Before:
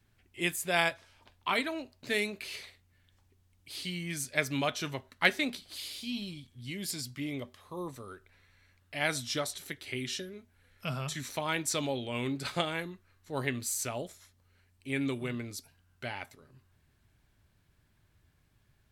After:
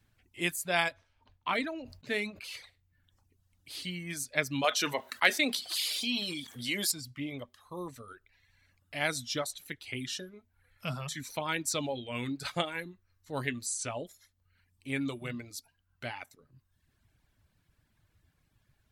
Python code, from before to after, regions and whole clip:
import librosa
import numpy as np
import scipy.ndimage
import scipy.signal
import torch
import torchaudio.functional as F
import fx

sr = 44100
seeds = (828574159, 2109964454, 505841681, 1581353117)

y = fx.chain(x, sr, fx.high_shelf(hz=4900.0, db=-10.5),
    fx.sustainer(db_per_s=84.0), at=(0.92, 2.44))
y = fx.chain(y, sr, fx.highpass(hz=350.0, slope=12),
    fx.env_flatten(amount_pct=50), at=(4.64, 6.92))
y = fx.chain(y, sr, fx.brickwall_lowpass(high_hz=11000.0),
    fx.doubler(ms=19.0, db=-12.5), at=(13.66, 14.07))
y = fx.notch(y, sr, hz=390.0, q=12.0)
y = fx.dereverb_blind(y, sr, rt60_s=0.84)